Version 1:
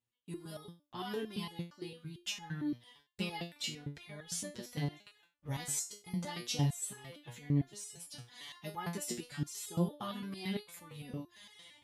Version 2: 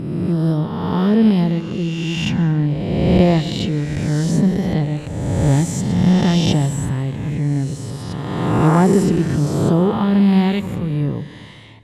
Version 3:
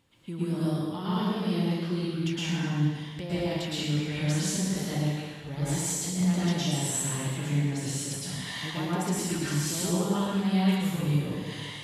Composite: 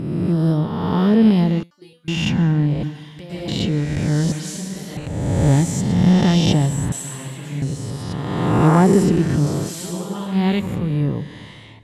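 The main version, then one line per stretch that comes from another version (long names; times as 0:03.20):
2
0:01.63–0:02.08: punch in from 1
0:02.83–0:03.48: punch in from 3
0:04.32–0:04.97: punch in from 3
0:06.92–0:07.62: punch in from 3
0:09.61–0:10.37: punch in from 3, crossfade 0.24 s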